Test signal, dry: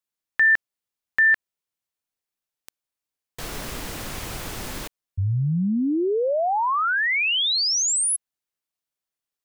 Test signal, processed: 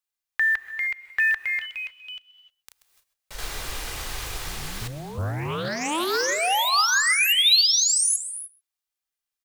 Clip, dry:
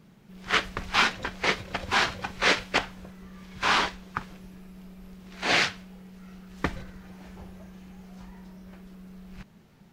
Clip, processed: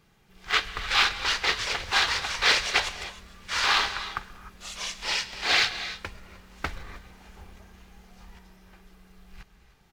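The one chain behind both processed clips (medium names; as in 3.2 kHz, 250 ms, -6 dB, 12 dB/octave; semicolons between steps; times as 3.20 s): comb 2.5 ms, depth 35%; dynamic bell 4 kHz, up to +6 dB, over -43 dBFS, Q 3.1; ever faster or slower copies 460 ms, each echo +3 st, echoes 3, each echo -6 dB; delay 130 ms -24 dB; short-mantissa float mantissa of 4-bit; peaking EQ 240 Hz -10.5 dB 2.6 oct; gated-style reverb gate 330 ms rising, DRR 11.5 dB; loudspeaker Doppler distortion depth 0.41 ms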